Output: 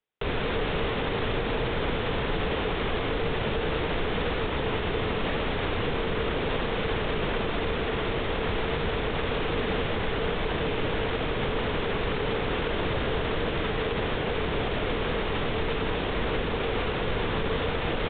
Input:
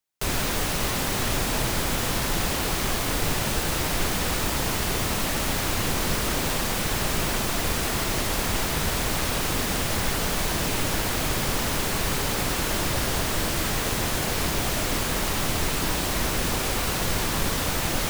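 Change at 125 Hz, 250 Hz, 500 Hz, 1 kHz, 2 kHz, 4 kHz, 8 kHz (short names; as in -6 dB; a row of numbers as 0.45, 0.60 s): -2.5 dB, -1.5 dB, +3.5 dB, -2.0 dB, -2.5 dB, -5.5 dB, under -40 dB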